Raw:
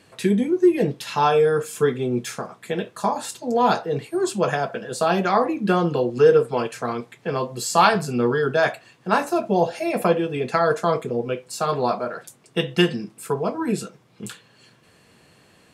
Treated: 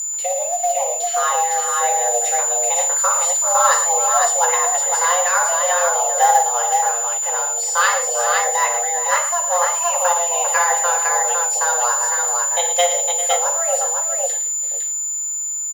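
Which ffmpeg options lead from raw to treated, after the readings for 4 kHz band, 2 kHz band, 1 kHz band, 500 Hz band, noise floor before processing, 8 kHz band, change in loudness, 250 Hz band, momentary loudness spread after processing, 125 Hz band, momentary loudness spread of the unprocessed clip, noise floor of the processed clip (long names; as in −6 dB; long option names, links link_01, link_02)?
+3.5 dB, +5.5 dB, +6.0 dB, −2.5 dB, −56 dBFS, +24.5 dB, +5.5 dB, below −40 dB, 5 LU, below −40 dB, 12 LU, −24 dBFS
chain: -filter_complex "[0:a]acrossover=split=5500[link_01][link_02];[link_02]acompressor=threshold=-42dB:ratio=4:attack=1:release=60[link_03];[link_01][link_03]amix=inputs=2:normalize=0,flanger=delay=5.2:depth=6.4:regen=80:speed=0.73:shape=sinusoidal,aecho=1:1:57|112|398|508:0.266|0.299|0.237|0.668,agate=range=-11dB:threshold=-51dB:ratio=16:detection=peak,lowshelf=frequency=83:gain=8,aeval=exprs='val(0)+0.0562*sin(2*PI*6700*n/s)':channel_layout=same,highshelf=frequency=8800:gain=11.5,acrusher=bits=5:mode=log:mix=0:aa=0.000001,dynaudnorm=framelen=200:gausssize=21:maxgain=11.5dB,afreqshift=350,volume=-1dB"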